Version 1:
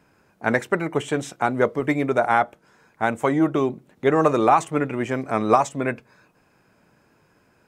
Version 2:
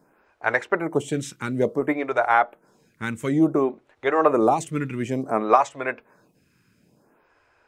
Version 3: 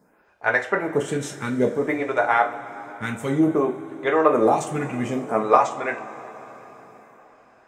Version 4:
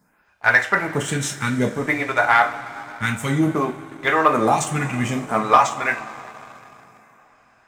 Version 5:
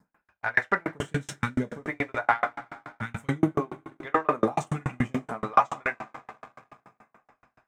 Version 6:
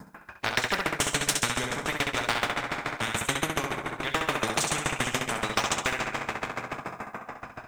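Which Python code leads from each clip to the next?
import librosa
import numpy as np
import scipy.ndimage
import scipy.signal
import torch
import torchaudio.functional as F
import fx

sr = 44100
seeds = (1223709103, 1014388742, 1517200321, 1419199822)

y1 = fx.stagger_phaser(x, sr, hz=0.57)
y1 = F.gain(torch.from_numpy(y1), 1.5).numpy()
y2 = fx.rev_double_slope(y1, sr, seeds[0], early_s=0.29, late_s=4.6, knee_db=-21, drr_db=1.5)
y2 = F.gain(torch.from_numpy(y2), -1.0).numpy()
y3 = fx.peak_eq(y2, sr, hz=440.0, db=-13.5, octaves=1.8)
y3 = fx.leveller(y3, sr, passes=1)
y3 = F.gain(torch.from_numpy(y3), 5.5).numpy()
y4 = fx.high_shelf(y3, sr, hz=3200.0, db=-10.5)
y4 = fx.tremolo_decay(y4, sr, direction='decaying', hz=7.0, depth_db=39)
y4 = F.gain(torch.from_numpy(y4), 2.5).numpy()
y5 = fx.echo_feedback(y4, sr, ms=66, feedback_pct=43, wet_db=-8)
y5 = fx.spectral_comp(y5, sr, ratio=4.0)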